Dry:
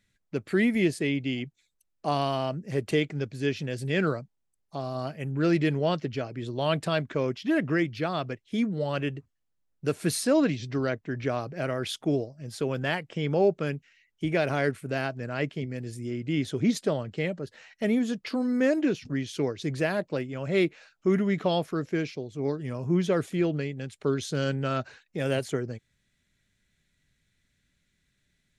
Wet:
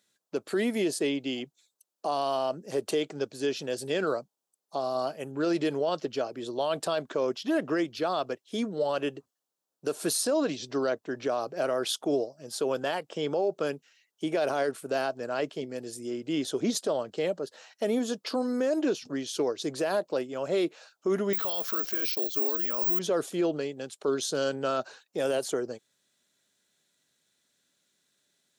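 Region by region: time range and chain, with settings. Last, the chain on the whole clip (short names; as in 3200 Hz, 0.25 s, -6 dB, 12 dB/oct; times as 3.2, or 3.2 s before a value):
21.33–22.99 band shelf 2700 Hz +11 dB 2.8 oct + careless resampling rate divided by 2×, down filtered, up zero stuff
whole clip: HPF 450 Hz 12 dB/oct; bell 2100 Hz -14 dB 0.88 oct; limiter -26 dBFS; gain +7 dB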